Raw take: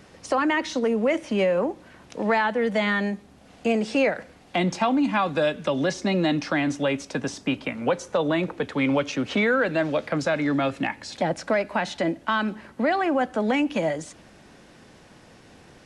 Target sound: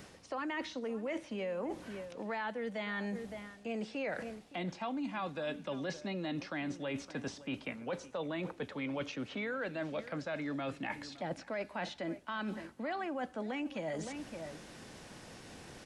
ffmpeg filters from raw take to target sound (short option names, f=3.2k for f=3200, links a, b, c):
-filter_complex "[0:a]highshelf=f=4.5k:g=6.5,acrossover=split=4600[a][b];[b]acompressor=threshold=-51dB:ratio=4:attack=1:release=60[c];[a][c]amix=inputs=2:normalize=0,asplit=2[d][e];[e]adelay=565.6,volume=-18dB,highshelf=f=4k:g=-12.7[f];[d][f]amix=inputs=2:normalize=0,areverse,acompressor=threshold=-37dB:ratio=4,areverse,volume=-1.5dB"